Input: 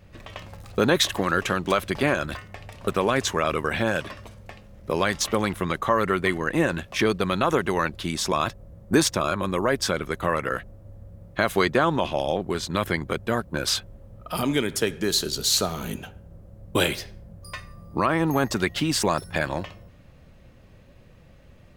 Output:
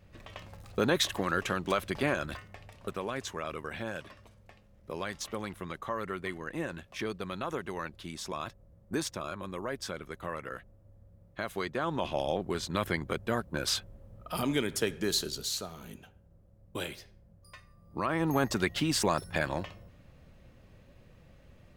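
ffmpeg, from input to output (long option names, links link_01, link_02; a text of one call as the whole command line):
ffmpeg -i in.wav -af "volume=10.5dB,afade=type=out:start_time=2.34:duration=0.67:silence=0.473151,afade=type=in:start_time=11.75:duration=0.41:silence=0.421697,afade=type=out:start_time=15.12:duration=0.49:silence=0.354813,afade=type=in:start_time=17.81:duration=0.55:silence=0.316228" out.wav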